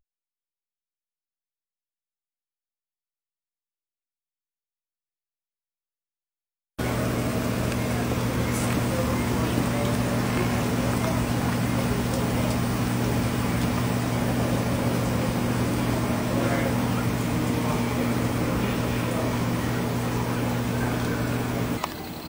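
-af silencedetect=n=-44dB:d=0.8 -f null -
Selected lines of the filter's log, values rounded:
silence_start: 0.00
silence_end: 6.79 | silence_duration: 6.79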